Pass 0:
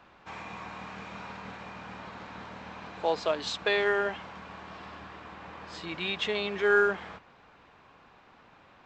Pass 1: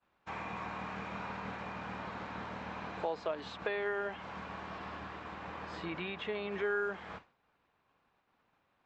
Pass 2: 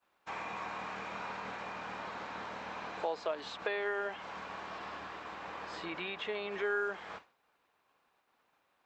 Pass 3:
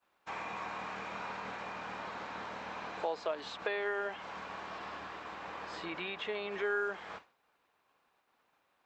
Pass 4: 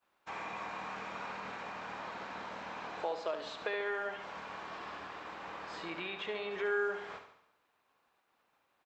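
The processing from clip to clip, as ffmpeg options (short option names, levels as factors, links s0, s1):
-filter_complex "[0:a]acompressor=threshold=0.0158:ratio=3,agate=range=0.0224:threshold=0.00631:ratio=3:detection=peak,acrossover=split=2600[s0][s1];[s1]acompressor=threshold=0.00112:ratio=4:attack=1:release=60[s2];[s0][s2]amix=inputs=2:normalize=0,volume=1.19"
-af "bass=f=250:g=-11,treble=f=4000:g=5,volume=1.12"
-af anull
-af "aecho=1:1:71|142|213|284|355|426:0.355|0.188|0.0997|0.0528|0.028|0.0148,volume=0.841"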